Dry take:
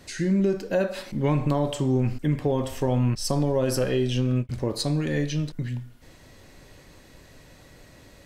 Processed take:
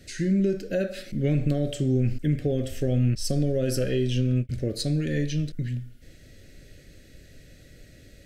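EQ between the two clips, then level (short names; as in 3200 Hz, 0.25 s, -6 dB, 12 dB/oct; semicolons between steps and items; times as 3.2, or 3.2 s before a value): Butterworth band-stop 960 Hz, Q 1.1; low shelf 110 Hz +6.5 dB; -2.0 dB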